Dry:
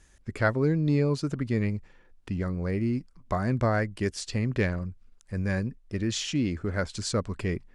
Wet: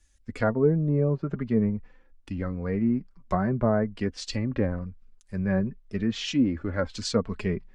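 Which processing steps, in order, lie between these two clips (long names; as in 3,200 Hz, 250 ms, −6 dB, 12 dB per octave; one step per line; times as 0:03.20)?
treble cut that deepens with the level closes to 900 Hz, closed at −21.5 dBFS
flanger 0.45 Hz, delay 3.4 ms, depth 2 ms, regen +32%
multiband upward and downward expander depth 40%
level +6 dB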